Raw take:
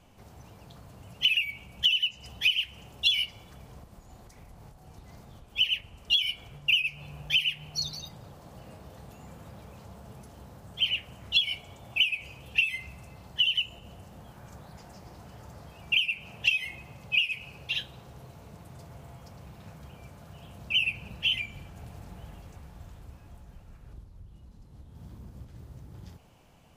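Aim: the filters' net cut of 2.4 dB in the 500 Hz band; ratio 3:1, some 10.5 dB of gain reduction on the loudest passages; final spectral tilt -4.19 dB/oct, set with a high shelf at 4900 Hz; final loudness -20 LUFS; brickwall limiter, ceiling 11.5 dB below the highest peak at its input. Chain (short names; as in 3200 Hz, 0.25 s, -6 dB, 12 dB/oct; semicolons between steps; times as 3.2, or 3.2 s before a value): bell 500 Hz -3 dB; high shelf 4900 Hz -7.5 dB; compressor 3:1, threshold -36 dBFS; gain +25 dB; limiter -9.5 dBFS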